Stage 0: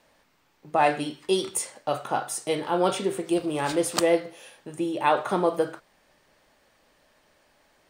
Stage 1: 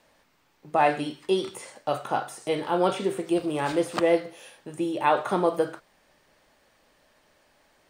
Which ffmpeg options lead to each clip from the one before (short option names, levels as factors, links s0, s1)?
-filter_complex "[0:a]acrossover=split=3200[s0][s1];[s1]acompressor=threshold=0.00891:ratio=4:attack=1:release=60[s2];[s0][s2]amix=inputs=2:normalize=0"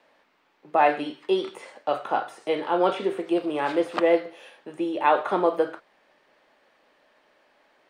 -filter_complex "[0:a]acrossover=split=230 4000:gain=0.126 1 0.178[s0][s1][s2];[s0][s1][s2]amix=inputs=3:normalize=0,volume=1.26"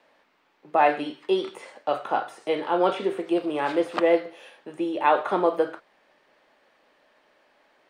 -af anull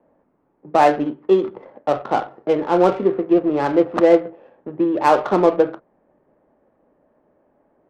-af "lowpass=f=1700:p=1,equalizer=f=85:w=0.32:g=10,adynamicsmooth=sensitivity=2.5:basefreq=780,volume=1.78"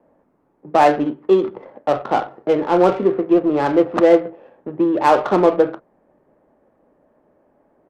-filter_complex "[0:a]asplit=2[s0][s1];[s1]volume=8.41,asoftclip=hard,volume=0.119,volume=0.299[s2];[s0][s2]amix=inputs=2:normalize=0,aresample=32000,aresample=44100"